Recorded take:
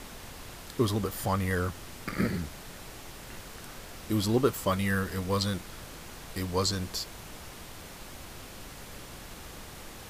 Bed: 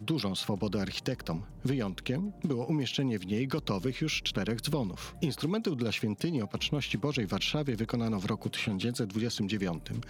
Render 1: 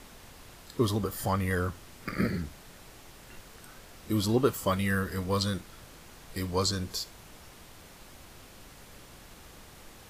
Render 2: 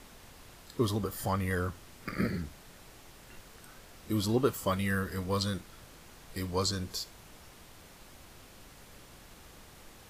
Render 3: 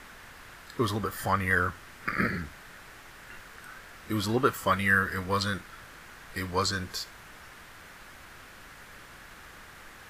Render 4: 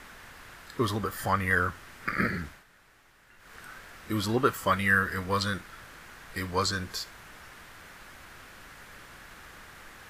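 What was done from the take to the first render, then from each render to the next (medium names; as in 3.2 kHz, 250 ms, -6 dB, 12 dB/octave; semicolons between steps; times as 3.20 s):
noise print and reduce 6 dB
trim -2.5 dB
peaking EQ 1.6 kHz +13 dB 1.3 oct
2.47–3.56 s: dip -11.5 dB, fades 0.18 s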